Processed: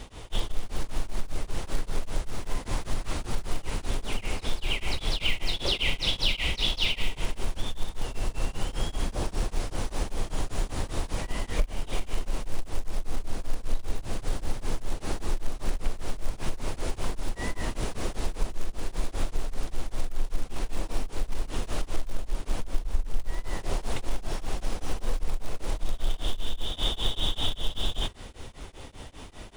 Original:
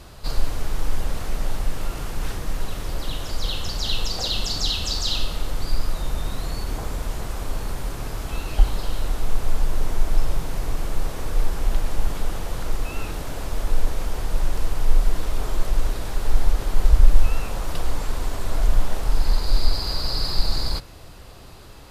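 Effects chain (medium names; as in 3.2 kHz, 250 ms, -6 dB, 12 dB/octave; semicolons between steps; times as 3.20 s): speed mistake 45 rpm record played at 33 rpm; in parallel at -7.5 dB: short-mantissa float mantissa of 2-bit; on the sum: compression 4:1, threshold -19 dBFS, peak gain reduction 15 dB; tremolo of two beating tones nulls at 5.1 Hz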